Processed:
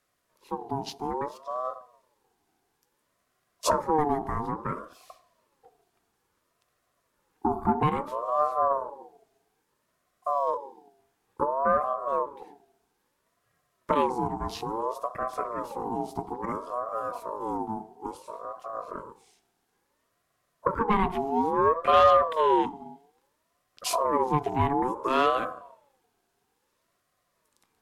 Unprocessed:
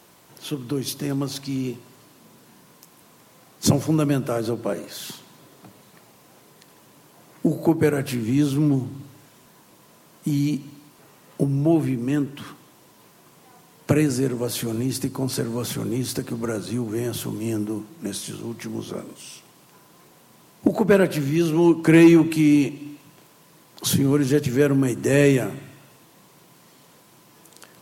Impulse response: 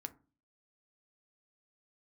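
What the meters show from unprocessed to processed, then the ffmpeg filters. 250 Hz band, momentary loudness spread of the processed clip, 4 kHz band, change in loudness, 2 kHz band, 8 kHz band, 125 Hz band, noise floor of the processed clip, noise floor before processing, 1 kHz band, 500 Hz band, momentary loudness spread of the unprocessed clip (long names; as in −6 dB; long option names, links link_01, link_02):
−14.0 dB, 14 LU, −7.5 dB, −5.5 dB, −7.5 dB, −12.0 dB, −14.5 dB, −76 dBFS, −54 dBFS, +11.5 dB, −4.0 dB, 17 LU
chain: -filter_complex "[0:a]afwtdn=0.0224,asoftclip=type=tanh:threshold=-7dB,asplit=2[link_01][link_02];[1:a]atrim=start_sample=2205,asetrate=24255,aresample=44100[link_03];[link_02][link_03]afir=irnorm=-1:irlink=0,volume=-1dB[link_04];[link_01][link_04]amix=inputs=2:normalize=0,aeval=exprs='val(0)*sin(2*PI*720*n/s+720*0.25/0.59*sin(2*PI*0.59*n/s))':channel_layout=same,volume=-8dB"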